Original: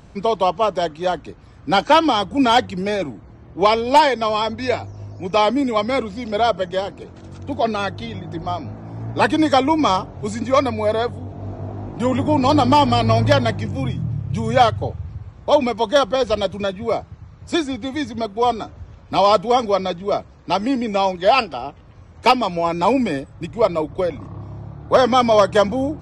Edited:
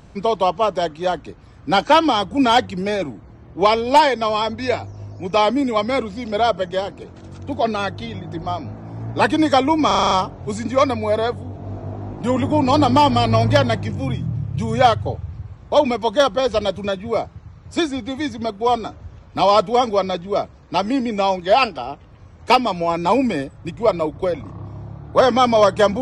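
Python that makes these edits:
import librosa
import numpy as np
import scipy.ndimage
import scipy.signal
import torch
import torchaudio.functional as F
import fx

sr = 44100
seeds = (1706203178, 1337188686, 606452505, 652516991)

y = fx.edit(x, sr, fx.stutter(start_s=9.87, slice_s=0.04, count=7), tone=tone)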